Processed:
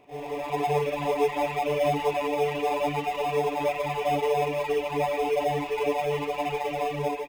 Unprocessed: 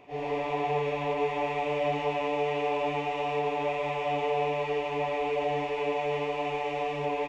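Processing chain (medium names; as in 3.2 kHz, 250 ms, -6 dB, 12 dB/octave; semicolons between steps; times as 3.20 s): reverb removal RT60 1.8 s; in parallel at -10.5 dB: sample-rate reducer 2.9 kHz, jitter 0%; on the sum: level rider gain up to 9 dB; trim -4.5 dB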